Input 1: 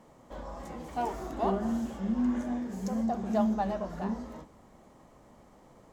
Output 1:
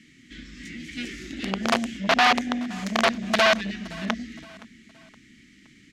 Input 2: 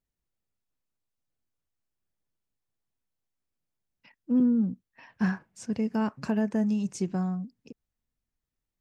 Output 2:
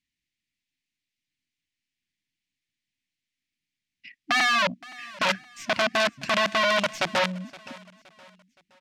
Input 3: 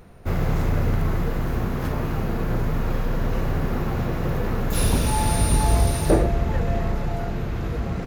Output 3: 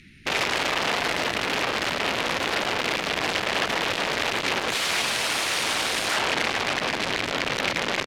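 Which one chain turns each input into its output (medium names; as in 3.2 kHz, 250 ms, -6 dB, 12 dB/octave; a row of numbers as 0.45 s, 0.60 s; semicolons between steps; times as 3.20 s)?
tracing distortion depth 0.087 ms; elliptic band-stop 290–2000 Hz, stop band 60 dB; integer overflow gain 26 dB; low-pass 2.8 kHz 12 dB/octave; tilt EQ +4 dB/octave; feedback delay 519 ms, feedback 40%, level -22 dB; transformer saturation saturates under 1.4 kHz; normalise loudness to -24 LUFS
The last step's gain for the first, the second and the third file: +14.5 dB, +10.5 dB, +9.5 dB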